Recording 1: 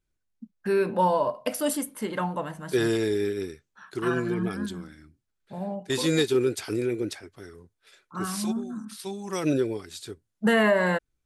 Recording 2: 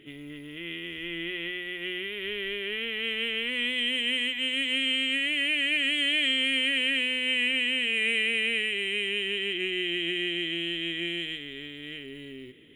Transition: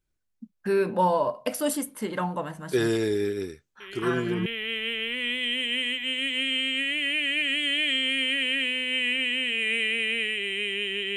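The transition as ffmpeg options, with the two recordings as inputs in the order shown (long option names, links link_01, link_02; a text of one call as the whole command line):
ffmpeg -i cue0.wav -i cue1.wav -filter_complex "[1:a]asplit=2[link_01][link_02];[0:a]apad=whole_dur=11.16,atrim=end=11.16,atrim=end=4.462[link_03];[link_02]atrim=start=2.808:end=9.51[link_04];[link_01]atrim=start=2.15:end=2.81,asetpts=PTS-STARTPTS,volume=-9dB,afade=type=in:duration=0.004:curve=hsin,afade=type=out:start_time=0.656:duration=0.004:curve=hsin,adelay=3800[link_05];[link_03][link_04]acrossfade=duration=0.004:curve1=hsin:curve2=hsin[link_06];[link_06][link_05]amix=inputs=2:normalize=0" out.wav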